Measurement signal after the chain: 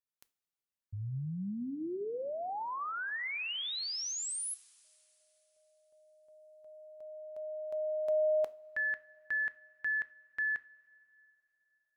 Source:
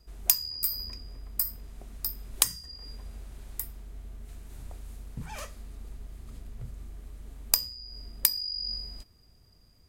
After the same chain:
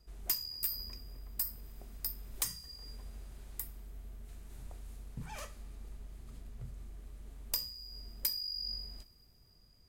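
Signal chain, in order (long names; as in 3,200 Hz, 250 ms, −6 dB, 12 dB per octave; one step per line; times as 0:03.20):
gain into a clipping stage and back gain 20 dB
coupled-rooms reverb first 0.3 s, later 3.6 s, from −20 dB, DRR 13.5 dB
level −5 dB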